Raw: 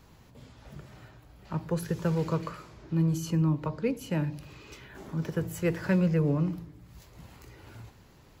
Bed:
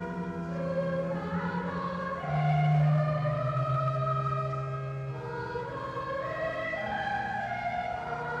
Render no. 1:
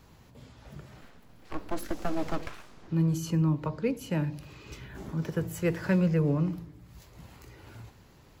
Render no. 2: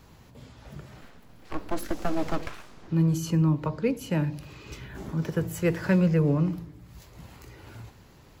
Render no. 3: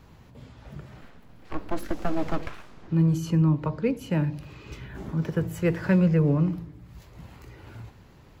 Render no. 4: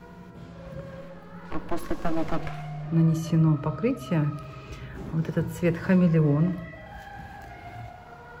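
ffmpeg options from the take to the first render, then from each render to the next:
-filter_complex "[0:a]asettb=1/sr,asplit=3[a][b][c];[a]atrim=end=1.014[d];[b]atrim=start=1.01:end=2.88,asetpts=PTS-STARTPTS,afade=t=in:d=0.004:c=qsin,afade=t=out:st=1.866:d=0.004:c=qsin,aeval=exprs='abs(val(0))':c=same[e];[c]atrim=start=2.876[f];[d][e]acrossfade=d=0.004:c1=hsin:c2=qsin[g];[g][f]acrossfade=d=0.004:c1=qsin:c2=hsin,asettb=1/sr,asplit=3[h][i][j];[h]atrim=end=4.664[k];[i]atrim=start=4.66:end=5.12,asetpts=PTS-STARTPTS,afade=t=in:d=0.004:c=qsin,afade=t=out:st=0.456:d=0.004:c=qsin,bass=f=250:g=8,treble=f=4k:g=1[l];[j]atrim=start=5.116[m];[k][l]acrossfade=d=0.004:c1=hsin:c2=qsin[n];[n][m]acrossfade=d=0.004:c1=qsin:c2=hsin"
-af "volume=3dB"
-af "bass=f=250:g=2,treble=f=4k:g=-6"
-filter_complex "[1:a]volume=-11.5dB[a];[0:a][a]amix=inputs=2:normalize=0"

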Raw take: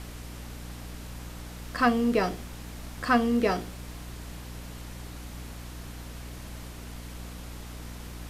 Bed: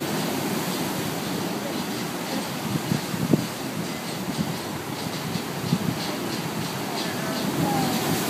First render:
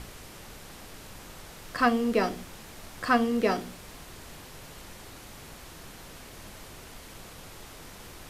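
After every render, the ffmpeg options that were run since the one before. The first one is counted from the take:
-af "bandreject=f=60:t=h:w=4,bandreject=f=120:t=h:w=4,bandreject=f=180:t=h:w=4,bandreject=f=240:t=h:w=4,bandreject=f=300:t=h:w=4"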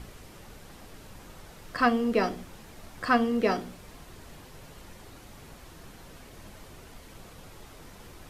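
-af "afftdn=nr=6:nf=-47"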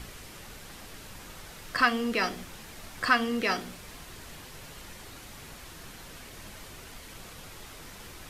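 -filter_complex "[0:a]acrossover=split=1300[a][b];[a]alimiter=limit=-23.5dB:level=0:latency=1:release=167[c];[b]acontrast=66[d];[c][d]amix=inputs=2:normalize=0"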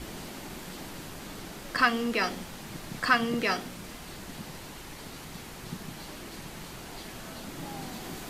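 -filter_complex "[1:a]volume=-16.5dB[a];[0:a][a]amix=inputs=2:normalize=0"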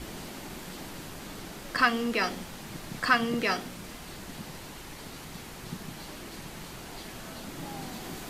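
-af anull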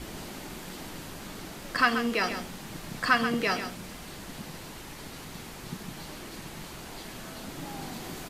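-af "aecho=1:1:133:0.335"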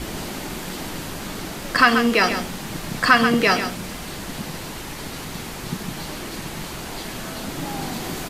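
-af "volume=10dB,alimiter=limit=-2dB:level=0:latency=1"

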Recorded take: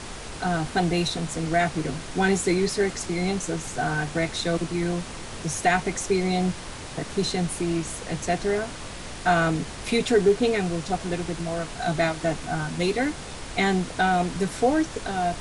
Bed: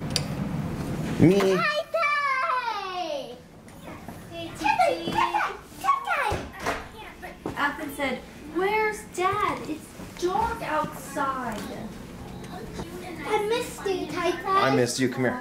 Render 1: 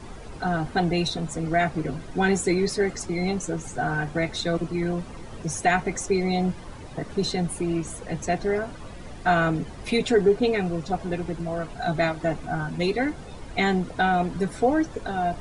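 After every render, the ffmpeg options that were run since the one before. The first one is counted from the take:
-af "afftdn=nr=13:nf=-37"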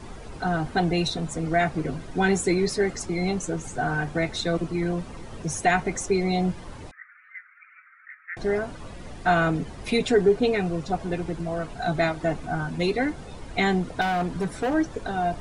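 -filter_complex "[0:a]asettb=1/sr,asplit=3[a][b][c];[a]atrim=end=6.914[d];[b]atrim=start=6.91:end=8.37,asetpts=PTS-STARTPTS,afade=t=in:d=0.004:c=qsin,afade=t=out:st=1.456:d=0.004:c=qsin,asuperpass=centerf=1700:order=12:qfactor=1.7[e];[c]atrim=start=8.366[f];[d][e]acrossfade=d=0.004:c1=hsin:c2=qsin[g];[g][f]acrossfade=d=0.004:c1=qsin:c2=hsin,asettb=1/sr,asplit=3[h][i][j];[h]atrim=end=14.014[k];[i]atrim=start=14.01:end=14.74,asetpts=PTS-STARTPTS,afade=t=in:d=0.004:c=qsin,afade=t=out:st=0.726:d=0.004:c=qsin,asoftclip=type=hard:threshold=-21.5dB[l];[j]atrim=start=14.736[m];[k][l]acrossfade=d=0.004:c1=hsin:c2=qsin[n];[n][m]acrossfade=d=0.004:c1=qsin:c2=hsin"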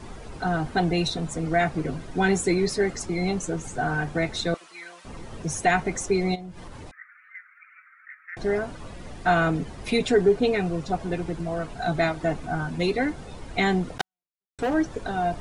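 -filter_complex "[0:a]asettb=1/sr,asplit=3[a][b][c];[a]atrim=end=4.544[d];[b]atrim=start=4.54:end=5.05,asetpts=PTS-STARTPTS,afade=t=in:d=0.004:c=qsin,afade=t=out:st=0.506:d=0.004:c=qsin,highpass=1.4k[e];[c]atrim=start=5.046[f];[d][e]acrossfade=d=0.004:c1=hsin:c2=qsin[g];[g][f]acrossfade=d=0.004:c1=qsin:c2=hsin,asplit=3[h][i][j];[h]afade=t=out:st=6.34:d=0.02[k];[i]acompressor=threshold=-35dB:ratio=8:attack=3.2:release=140:knee=1:detection=peak,afade=t=in:st=6.34:d=0.02,afade=t=out:st=8.32:d=0.02[l];[j]afade=t=in:st=8.32:d=0.02[m];[k][l][m]amix=inputs=3:normalize=0,asettb=1/sr,asplit=3[n][o][p];[n]atrim=end=13.984[q];[o]atrim=start=13.98:end=14.59,asetpts=PTS-STARTPTS,afade=t=in:d=0.004:c=qsin,afade=t=out:st=0.606:d=0.004:c=qsin,acrusher=bits=2:mix=0:aa=0.5[r];[p]atrim=start=14.586[s];[q][r]acrossfade=d=0.004:c1=hsin:c2=qsin[t];[t][s]acrossfade=d=0.004:c1=qsin:c2=hsin"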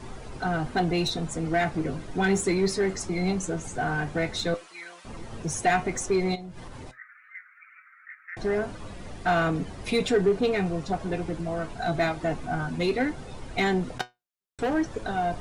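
-filter_complex "[0:a]flanger=delay=7.8:depth=2.8:regen=74:speed=0.15:shape=sinusoidal,asplit=2[a][b];[b]volume=28.5dB,asoftclip=hard,volume=-28.5dB,volume=-4.5dB[c];[a][c]amix=inputs=2:normalize=0"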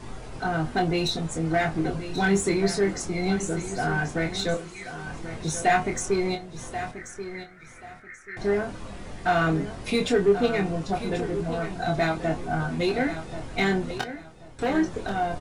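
-filter_complex "[0:a]asplit=2[a][b];[b]adelay=25,volume=-5.5dB[c];[a][c]amix=inputs=2:normalize=0,aecho=1:1:1084|2168|3252:0.266|0.0665|0.0166"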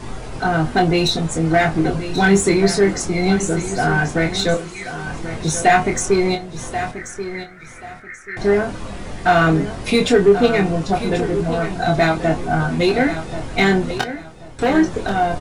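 -af "volume=8.5dB,alimiter=limit=-3dB:level=0:latency=1"

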